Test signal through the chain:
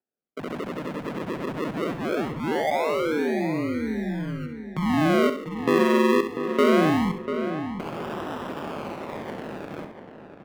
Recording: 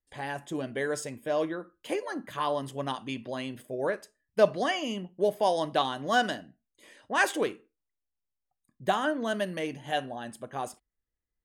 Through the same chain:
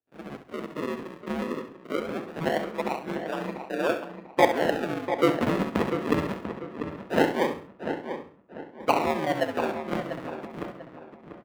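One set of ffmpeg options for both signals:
ffmpeg -i in.wav -filter_complex "[0:a]acrusher=samples=40:mix=1:aa=0.000001:lfo=1:lforange=40:lforate=0.21,aeval=exprs='val(0)*sin(2*PI*78*n/s)':channel_layout=same,acrossover=split=160 3100:gain=0.0708 1 0.2[link_01][link_02][link_03];[link_01][link_02][link_03]amix=inputs=3:normalize=0,asplit=2[link_04][link_05];[link_05]aecho=0:1:67|134|201:0.316|0.098|0.0304[link_06];[link_04][link_06]amix=inputs=2:normalize=0,dynaudnorm=framelen=330:gausssize=11:maxgain=5dB,asplit=2[link_07][link_08];[link_08]adelay=693,lowpass=frequency=2500:poles=1,volume=-8.5dB,asplit=2[link_09][link_10];[link_10]adelay=693,lowpass=frequency=2500:poles=1,volume=0.34,asplit=2[link_11][link_12];[link_12]adelay=693,lowpass=frequency=2500:poles=1,volume=0.34,asplit=2[link_13][link_14];[link_14]adelay=693,lowpass=frequency=2500:poles=1,volume=0.34[link_15];[link_09][link_11][link_13][link_15]amix=inputs=4:normalize=0[link_16];[link_07][link_16]amix=inputs=2:normalize=0,volume=2dB" out.wav

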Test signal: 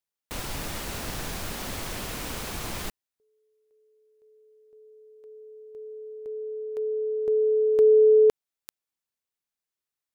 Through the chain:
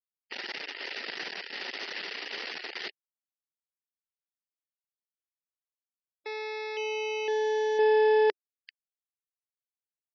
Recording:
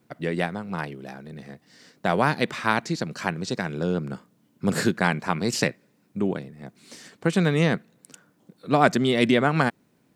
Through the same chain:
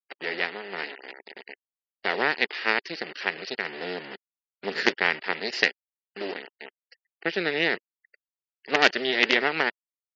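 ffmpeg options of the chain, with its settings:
ffmpeg -i in.wav -af "acrusher=bits=3:dc=4:mix=0:aa=0.000001,highpass=390,equalizer=frequency=400:width_type=q:width=4:gain=5,equalizer=frequency=630:width_type=q:width=4:gain=-3,equalizer=frequency=1100:width_type=q:width=4:gain=-6,equalizer=frequency=1900:width_type=q:width=4:gain=10,equalizer=frequency=2800:width_type=q:width=4:gain=7,equalizer=frequency=4700:width_type=q:width=4:gain=7,lowpass=frequency=5300:width=0.5412,lowpass=frequency=5300:width=1.3066,afftfilt=real='re*gte(hypot(re,im),0.00891)':imag='im*gte(hypot(re,im),0.00891)':win_size=1024:overlap=0.75,volume=-1dB" out.wav

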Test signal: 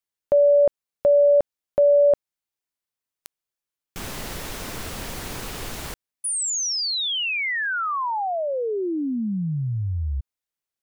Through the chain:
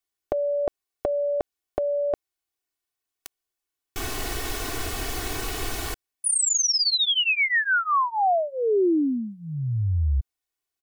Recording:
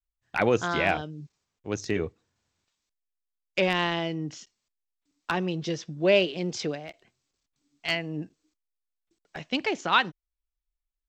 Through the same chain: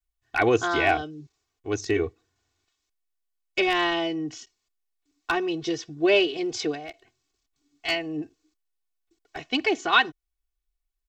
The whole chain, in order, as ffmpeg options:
ffmpeg -i in.wav -af "aecho=1:1:2.7:0.92" out.wav

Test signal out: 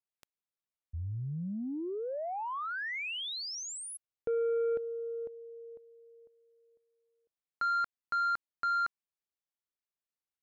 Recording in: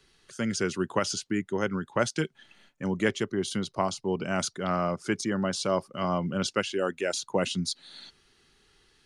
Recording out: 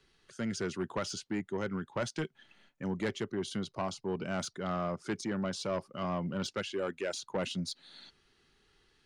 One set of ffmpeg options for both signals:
ffmpeg -i in.wav -af "highshelf=frequency=6400:gain=-9,asoftclip=type=tanh:threshold=-22dB,volume=-4dB" out.wav

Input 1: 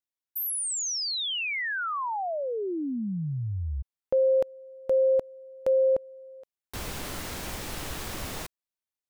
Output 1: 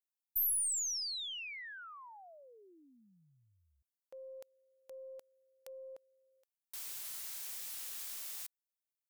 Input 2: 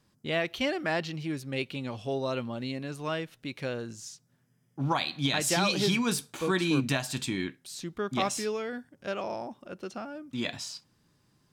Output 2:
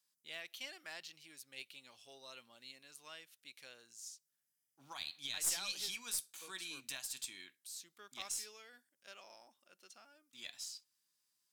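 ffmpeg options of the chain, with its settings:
ffmpeg -i in.wav -af "aderivative,aeval=exprs='0.158*(cos(1*acos(clip(val(0)/0.158,-1,1)))-cos(1*PI/2))+0.0316*(cos(2*acos(clip(val(0)/0.158,-1,1)))-cos(2*PI/2))':channel_layout=same,volume=-5dB" out.wav

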